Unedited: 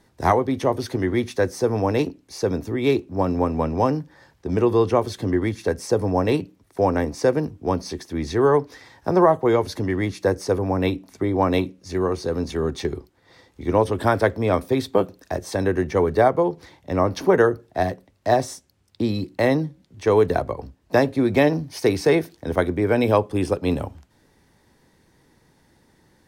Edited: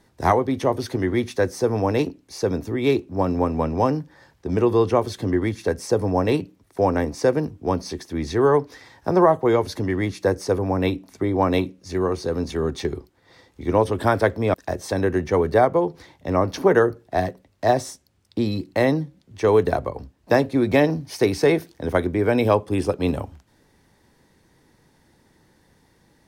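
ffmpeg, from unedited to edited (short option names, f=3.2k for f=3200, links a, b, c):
-filter_complex "[0:a]asplit=2[a][b];[a]atrim=end=14.542[c];[b]atrim=start=15.168[d];[c][d]acrossfade=d=0.004:c1=hsin:c2=hsin"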